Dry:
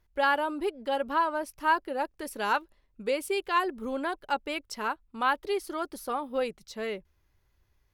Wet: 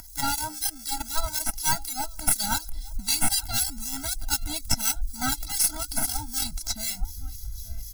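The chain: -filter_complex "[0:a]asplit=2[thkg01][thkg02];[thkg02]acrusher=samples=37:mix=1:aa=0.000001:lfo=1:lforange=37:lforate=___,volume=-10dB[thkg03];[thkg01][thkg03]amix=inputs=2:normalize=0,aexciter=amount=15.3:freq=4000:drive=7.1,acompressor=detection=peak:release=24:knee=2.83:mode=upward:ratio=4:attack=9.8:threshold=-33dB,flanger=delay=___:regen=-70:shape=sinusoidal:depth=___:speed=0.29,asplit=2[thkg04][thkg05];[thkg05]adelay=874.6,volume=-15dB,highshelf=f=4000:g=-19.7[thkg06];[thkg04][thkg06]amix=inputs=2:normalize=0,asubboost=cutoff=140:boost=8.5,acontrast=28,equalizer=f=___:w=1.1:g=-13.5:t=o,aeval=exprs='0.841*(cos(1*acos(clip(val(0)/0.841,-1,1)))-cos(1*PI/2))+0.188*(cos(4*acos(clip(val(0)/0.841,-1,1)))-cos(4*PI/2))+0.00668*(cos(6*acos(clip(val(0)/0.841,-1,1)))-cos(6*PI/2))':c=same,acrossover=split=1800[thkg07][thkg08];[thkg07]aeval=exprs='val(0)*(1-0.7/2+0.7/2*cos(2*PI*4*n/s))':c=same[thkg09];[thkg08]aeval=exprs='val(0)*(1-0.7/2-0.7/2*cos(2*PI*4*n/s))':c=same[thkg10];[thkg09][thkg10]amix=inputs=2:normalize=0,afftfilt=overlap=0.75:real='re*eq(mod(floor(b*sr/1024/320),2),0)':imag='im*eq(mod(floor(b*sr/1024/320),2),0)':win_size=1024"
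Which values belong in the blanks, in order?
0.36, 0.4, 5.1, 180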